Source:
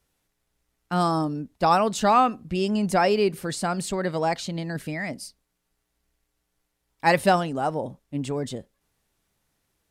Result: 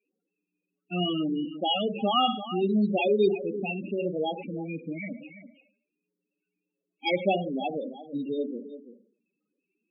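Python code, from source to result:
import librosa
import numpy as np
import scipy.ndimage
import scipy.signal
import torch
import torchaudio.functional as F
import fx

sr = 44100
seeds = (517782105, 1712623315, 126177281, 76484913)

y = fx.sample_hold(x, sr, seeds[0], rate_hz=4100.0, jitter_pct=0)
y = fx.cabinet(y, sr, low_hz=200.0, low_slope=24, high_hz=7700.0, hz=(660.0, 960.0, 1800.0, 2600.0), db=(-5, -10, -6, 9))
y = fx.filter_lfo_notch(y, sr, shape='sine', hz=1.5, low_hz=850.0, high_hz=2300.0, q=1.9)
y = y + 10.0 ** (-12.5 / 20.0) * np.pad(y, (int(338 * sr / 1000.0), 0))[:len(y)]
y = fx.rev_schroeder(y, sr, rt60_s=0.56, comb_ms=30, drr_db=7.0)
y = fx.spec_topn(y, sr, count=8)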